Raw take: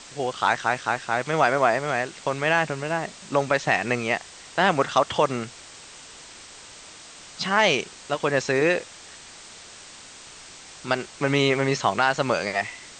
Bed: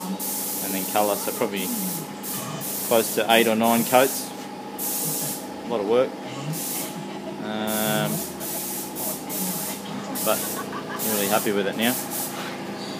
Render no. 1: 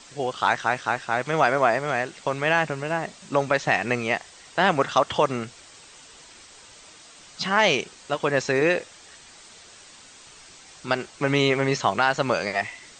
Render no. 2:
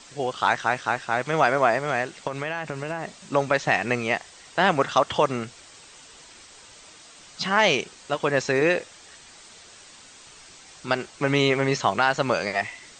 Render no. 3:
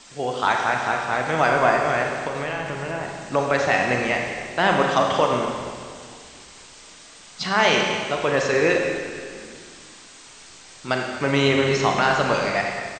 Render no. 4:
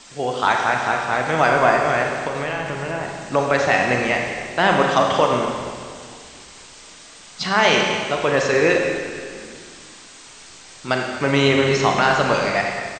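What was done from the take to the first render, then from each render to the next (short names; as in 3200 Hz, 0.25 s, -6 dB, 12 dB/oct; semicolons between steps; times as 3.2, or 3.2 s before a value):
denoiser 6 dB, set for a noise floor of -45 dBFS
2.27–3.22 compressor, threshold -24 dBFS
frequency-shifting echo 0.232 s, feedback 57%, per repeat -43 Hz, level -17 dB; Schroeder reverb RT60 1.8 s, combs from 32 ms, DRR 1 dB
gain +2.5 dB; limiter -2 dBFS, peak gain reduction 1.5 dB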